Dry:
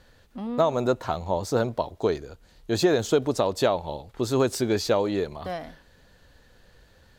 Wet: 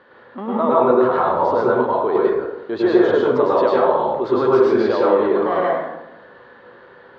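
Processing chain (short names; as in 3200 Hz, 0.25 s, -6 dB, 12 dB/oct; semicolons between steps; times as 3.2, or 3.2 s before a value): in parallel at +2 dB: negative-ratio compressor -31 dBFS, ratio -1; on the sum: speaker cabinet 310–2700 Hz, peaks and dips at 390 Hz +5 dB, 730 Hz -4 dB, 1100 Hz +7 dB, 2500 Hz -8 dB; plate-style reverb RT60 0.91 s, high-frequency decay 0.45×, pre-delay 90 ms, DRR -6 dB; gain -1.5 dB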